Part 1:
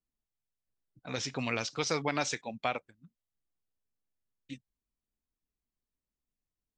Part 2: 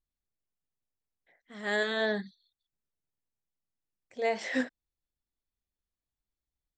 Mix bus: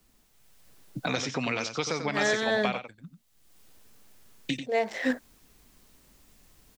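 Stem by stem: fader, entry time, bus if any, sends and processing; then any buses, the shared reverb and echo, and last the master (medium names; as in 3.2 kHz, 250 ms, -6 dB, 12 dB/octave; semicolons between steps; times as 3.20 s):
-3.5 dB, 0.00 s, no send, echo send -8.5 dB, three bands compressed up and down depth 100%
-3.0 dB, 0.50 s, no send, no echo send, local Wiener filter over 15 samples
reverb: none
echo: delay 92 ms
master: level rider gain up to 6 dB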